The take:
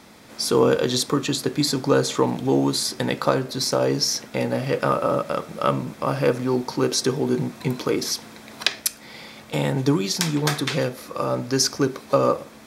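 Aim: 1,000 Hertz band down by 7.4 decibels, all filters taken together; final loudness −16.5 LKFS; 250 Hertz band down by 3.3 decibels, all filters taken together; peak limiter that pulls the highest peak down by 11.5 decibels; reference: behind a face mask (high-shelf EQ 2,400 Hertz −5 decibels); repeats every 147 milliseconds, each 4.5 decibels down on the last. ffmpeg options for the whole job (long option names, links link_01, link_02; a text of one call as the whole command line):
ffmpeg -i in.wav -af "equalizer=frequency=250:width_type=o:gain=-3.5,equalizer=frequency=1000:width_type=o:gain=-8.5,alimiter=limit=-14dB:level=0:latency=1,highshelf=frequency=2400:gain=-5,aecho=1:1:147|294|441|588|735|882|1029|1176|1323:0.596|0.357|0.214|0.129|0.0772|0.0463|0.0278|0.0167|0.01,volume=9dB" out.wav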